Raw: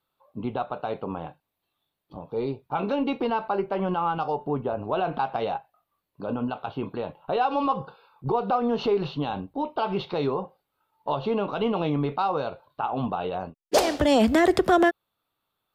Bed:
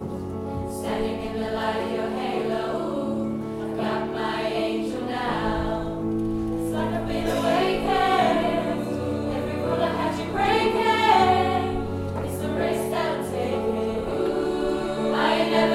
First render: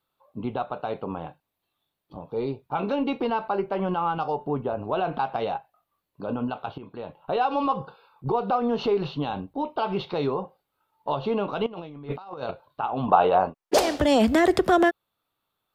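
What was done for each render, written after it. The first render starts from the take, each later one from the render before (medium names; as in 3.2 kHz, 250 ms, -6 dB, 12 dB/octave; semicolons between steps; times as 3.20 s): 6.78–7.31 s: fade in, from -14 dB; 11.66–12.51 s: compressor with a negative ratio -33 dBFS, ratio -0.5; 13.08–13.74 s: peaking EQ 910 Hz +13 dB 2.7 oct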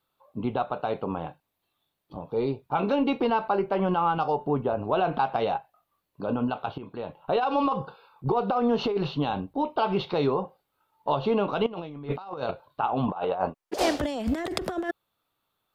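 compressor with a negative ratio -23 dBFS, ratio -0.5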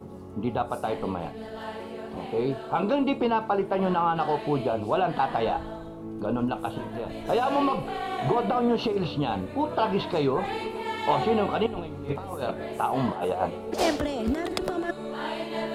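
add bed -11 dB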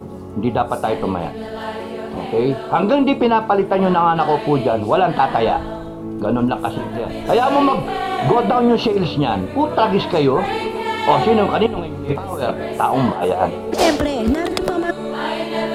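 trim +9.5 dB; peak limiter -1 dBFS, peak gain reduction 2 dB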